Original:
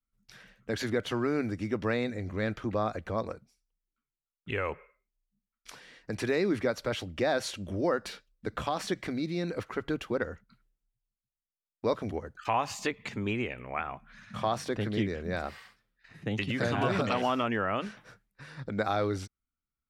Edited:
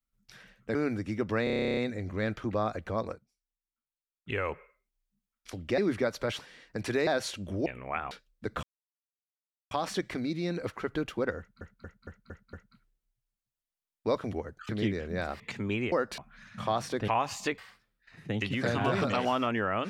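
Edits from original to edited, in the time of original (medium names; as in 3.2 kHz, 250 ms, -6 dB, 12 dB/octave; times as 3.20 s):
0.75–1.28 s: delete
1.97 s: stutter 0.03 s, 12 plays
3.34–4.50 s: dip -11 dB, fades 0.33 s exponential
5.73–6.41 s: swap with 7.02–7.27 s
7.86–8.12 s: swap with 13.49–13.94 s
8.64 s: insert silence 1.08 s
10.31 s: stutter 0.23 s, 6 plays
12.47–12.97 s: swap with 14.84–15.55 s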